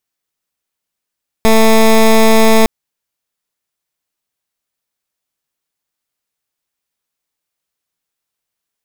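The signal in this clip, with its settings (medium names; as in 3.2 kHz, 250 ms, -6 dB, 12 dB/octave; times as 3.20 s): pulse 222 Hz, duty 15% -7 dBFS 1.21 s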